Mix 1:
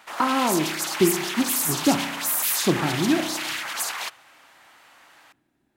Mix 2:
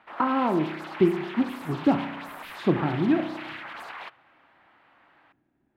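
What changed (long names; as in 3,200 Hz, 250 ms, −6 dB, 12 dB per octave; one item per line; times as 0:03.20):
background −3.0 dB
master: add high-frequency loss of the air 490 metres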